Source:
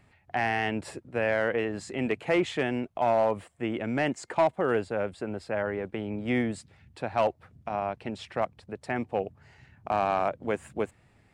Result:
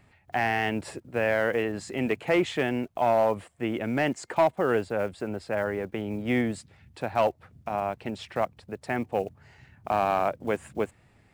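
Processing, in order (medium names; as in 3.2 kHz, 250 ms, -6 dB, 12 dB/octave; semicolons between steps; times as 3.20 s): block-companded coder 7-bit; trim +1.5 dB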